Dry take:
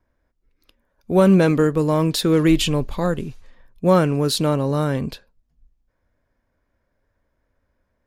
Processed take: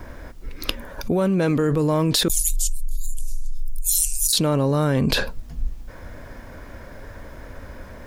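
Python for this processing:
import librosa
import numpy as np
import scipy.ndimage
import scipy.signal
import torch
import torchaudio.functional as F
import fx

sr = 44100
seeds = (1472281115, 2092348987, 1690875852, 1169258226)

y = fx.cheby2_bandstop(x, sr, low_hz=160.0, high_hz=1400.0, order=4, stop_db=80, at=(2.28, 4.33))
y = fx.env_flatten(y, sr, amount_pct=100)
y = y * 10.0 ** (-8.0 / 20.0)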